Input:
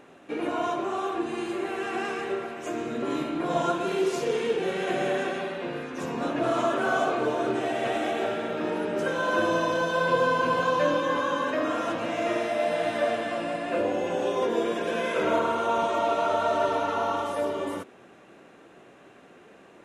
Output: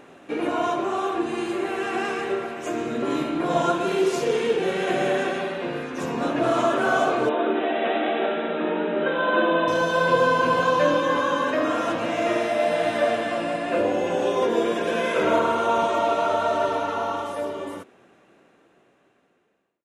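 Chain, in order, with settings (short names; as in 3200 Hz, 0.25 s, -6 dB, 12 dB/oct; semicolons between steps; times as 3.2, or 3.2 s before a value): ending faded out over 4.18 s; 7.29–9.68 brick-wall FIR band-pass 160–4000 Hz; gain +4 dB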